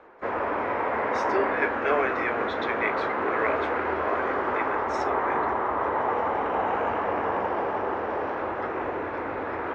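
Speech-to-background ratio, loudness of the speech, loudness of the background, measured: −4.0 dB, −31.5 LKFS, −27.5 LKFS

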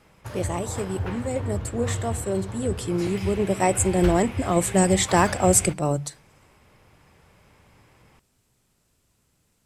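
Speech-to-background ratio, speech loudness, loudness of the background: 9.0 dB, −23.5 LKFS, −32.5 LKFS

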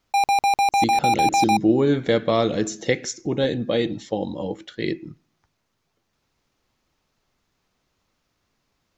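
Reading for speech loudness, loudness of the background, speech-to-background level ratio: −24.0 LKFS, −20.0 LKFS, −4.0 dB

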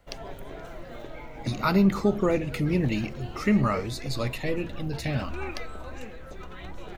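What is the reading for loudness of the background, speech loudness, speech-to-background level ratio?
−42.0 LKFS, −27.0 LKFS, 15.0 dB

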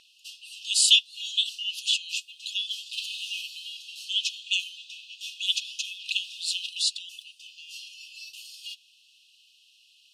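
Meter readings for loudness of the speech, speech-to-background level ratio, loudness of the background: −26.0 LKFS, 14.0 dB, −40.0 LKFS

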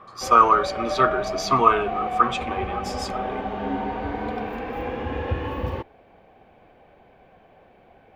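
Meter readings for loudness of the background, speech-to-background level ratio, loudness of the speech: −29.5 LKFS, 9.0 dB, −20.5 LKFS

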